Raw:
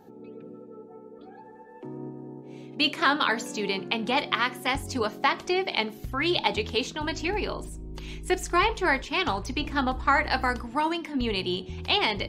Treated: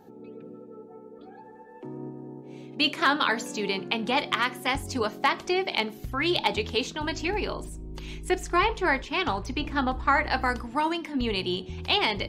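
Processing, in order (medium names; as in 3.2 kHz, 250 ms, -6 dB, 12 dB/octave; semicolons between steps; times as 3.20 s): 8.29–10.46 s: treble shelf 4.9 kHz -6 dB; hard clipper -10.5 dBFS, distortion -32 dB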